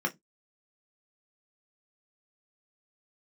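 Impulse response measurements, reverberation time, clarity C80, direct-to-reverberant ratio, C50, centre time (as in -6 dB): not exponential, 35.0 dB, 1.5 dB, 24.5 dB, 9 ms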